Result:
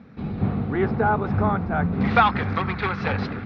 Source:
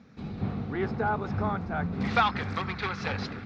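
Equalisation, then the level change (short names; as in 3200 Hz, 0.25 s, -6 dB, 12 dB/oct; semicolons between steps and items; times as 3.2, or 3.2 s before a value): LPF 3700 Hz 6 dB/oct; air absorption 160 m; +8.0 dB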